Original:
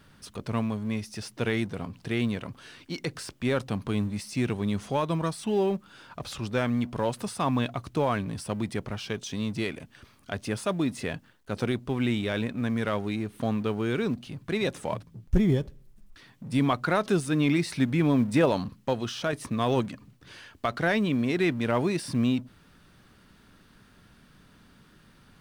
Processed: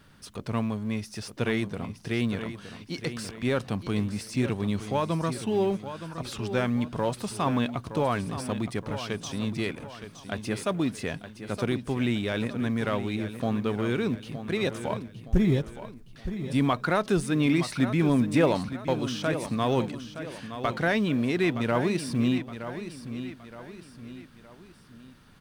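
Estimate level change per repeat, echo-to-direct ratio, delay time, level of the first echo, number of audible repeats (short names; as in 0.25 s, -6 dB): -7.5 dB, -10.0 dB, 0.918 s, -11.0 dB, 3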